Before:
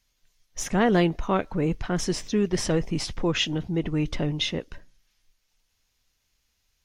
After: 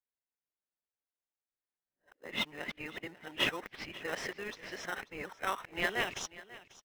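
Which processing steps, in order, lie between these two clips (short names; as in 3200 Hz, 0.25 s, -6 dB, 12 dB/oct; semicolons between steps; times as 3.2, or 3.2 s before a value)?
whole clip reversed; high shelf 3300 Hz +8.5 dB; low-pass opened by the level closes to 420 Hz, open at -19 dBFS; tone controls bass -8 dB, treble -5 dB; band-pass sweep 1800 Hz -> 5000 Hz, 5.81–6.49; in parallel at -5.5 dB: sample-rate reducer 2300 Hz, jitter 0%; on the sum: echo 0.541 s -18 dB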